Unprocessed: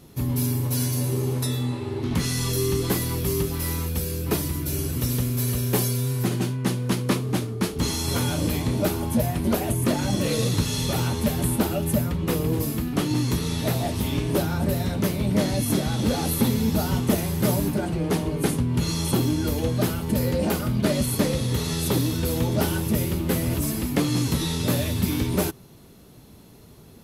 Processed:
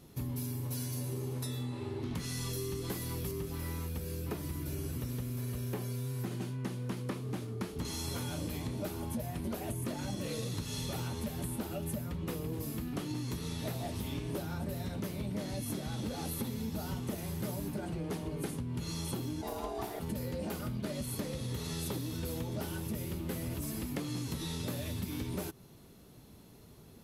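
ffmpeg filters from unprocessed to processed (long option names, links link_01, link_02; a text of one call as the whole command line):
ffmpeg -i in.wav -filter_complex "[0:a]asettb=1/sr,asplit=3[link_01][link_02][link_03];[link_01]atrim=end=3.314[link_04];[link_02]atrim=start=3.31:end=7.85,asetpts=PTS-STARTPTS,afade=type=in:duration=0.004:curve=qsin,afade=type=out:start_time=4.536:duration=0.004:curve=qsin,acrossover=split=2700[link_05][link_06];[link_06]acompressor=threshold=-35dB:ratio=4:attack=1:release=60[link_07];[link_05][link_07]amix=inputs=2:normalize=0[link_08];[link_03]atrim=start=7.846[link_09];[link_04][link_08]acrossfade=duration=0.004:curve1=hsin:curve2=qsin[link_10];[link_10][link_09]acrossfade=duration=0.004:curve1=qsin:curve2=hsin,asplit=3[link_11][link_12][link_13];[link_11]afade=type=out:start_time=19.41:duration=0.02[link_14];[link_12]aeval=exprs='val(0)*sin(2*PI*540*n/s)':channel_layout=same,afade=type=in:start_time=19.41:duration=0.02,afade=type=out:start_time=19.99:duration=0.02[link_15];[link_13]afade=type=in:start_time=19.99:duration=0.02[link_16];[link_14][link_15][link_16]amix=inputs=3:normalize=0,acompressor=threshold=-27dB:ratio=6,volume=-7dB" out.wav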